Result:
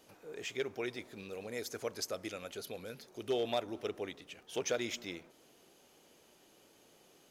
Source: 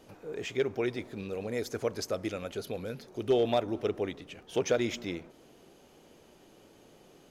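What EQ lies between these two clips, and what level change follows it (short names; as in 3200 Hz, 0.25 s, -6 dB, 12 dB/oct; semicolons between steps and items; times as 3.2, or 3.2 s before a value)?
tilt +2 dB/oct; -5.5 dB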